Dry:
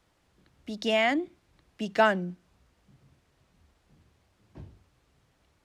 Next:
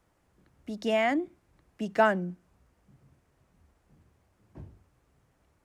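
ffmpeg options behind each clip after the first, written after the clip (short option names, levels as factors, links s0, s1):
-af "equalizer=f=3800:w=0.95:g=-9"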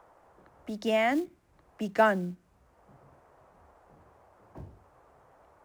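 -filter_complex "[0:a]acrossover=split=210|510|1200[s0][s1][s2][s3];[s1]acrusher=bits=5:mode=log:mix=0:aa=0.000001[s4];[s2]acompressor=mode=upward:threshold=0.00631:ratio=2.5[s5];[s0][s4][s5][s3]amix=inputs=4:normalize=0"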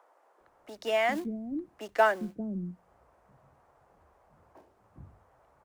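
-filter_complex "[0:a]asplit=2[s0][s1];[s1]aeval=exprs='sgn(val(0))*max(abs(val(0))-0.0126,0)':c=same,volume=0.668[s2];[s0][s2]amix=inputs=2:normalize=0,acrossover=split=320[s3][s4];[s3]adelay=400[s5];[s5][s4]amix=inputs=2:normalize=0,volume=0.631"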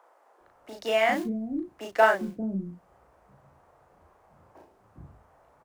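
-filter_complex "[0:a]asplit=2[s0][s1];[s1]adelay=36,volume=0.708[s2];[s0][s2]amix=inputs=2:normalize=0,volume=1.26"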